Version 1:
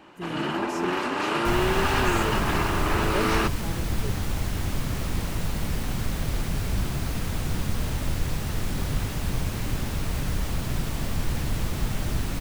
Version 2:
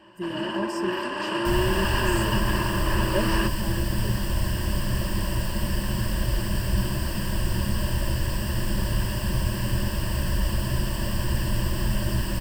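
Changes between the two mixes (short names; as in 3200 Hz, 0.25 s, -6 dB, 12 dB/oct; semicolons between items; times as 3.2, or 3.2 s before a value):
first sound -5.0 dB; master: add ripple EQ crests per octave 1.3, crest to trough 14 dB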